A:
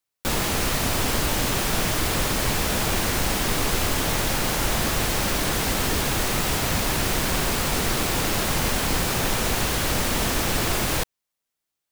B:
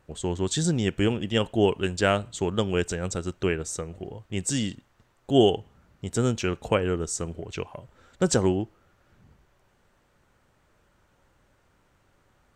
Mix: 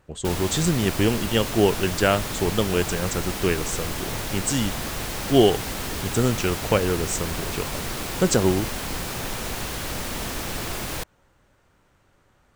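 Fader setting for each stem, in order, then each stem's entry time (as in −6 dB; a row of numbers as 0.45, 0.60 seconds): −6.5, +2.5 decibels; 0.00, 0.00 seconds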